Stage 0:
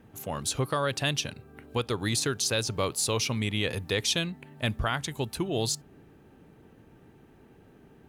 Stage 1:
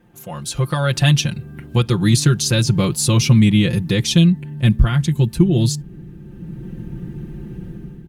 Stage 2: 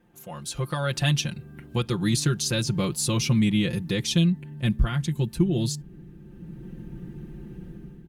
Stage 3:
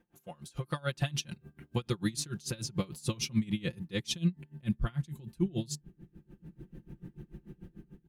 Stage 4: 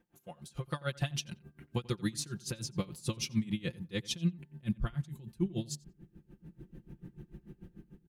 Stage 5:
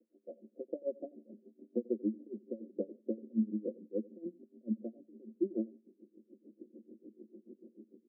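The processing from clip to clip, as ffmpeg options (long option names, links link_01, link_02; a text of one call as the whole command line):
ffmpeg -i in.wav -af "aecho=1:1:5.7:0.88,asubboost=boost=10:cutoff=220,dynaudnorm=framelen=480:gausssize=3:maxgain=10.5dB,volume=-1dB" out.wav
ffmpeg -i in.wav -af "equalizer=frequency=100:width_type=o:width=0.91:gain=-5.5,volume=-7dB" out.wav
ffmpeg -i in.wav -af "aeval=exprs='val(0)*pow(10,-25*(0.5-0.5*cos(2*PI*6.8*n/s))/20)':channel_layout=same,volume=-3.5dB" out.wav
ffmpeg -i in.wav -filter_complex "[0:a]asplit=2[link_01][link_02];[link_02]adelay=89,lowpass=frequency=4700:poles=1,volume=-22dB,asplit=2[link_03][link_04];[link_04]adelay=89,lowpass=frequency=4700:poles=1,volume=0.18[link_05];[link_01][link_03][link_05]amix=inputs=3:normalize=0,volume=-2dB" out.wav
ffmpeg -i in.wav -af "asuperpass=centerf=370:order=20:qfactor=0.89,volume=4dB" out.wav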